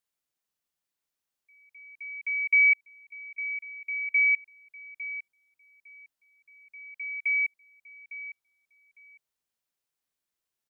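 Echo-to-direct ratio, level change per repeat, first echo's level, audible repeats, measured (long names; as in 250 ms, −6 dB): −14.0 dB, −15.0 dB, −14.0 dB, 2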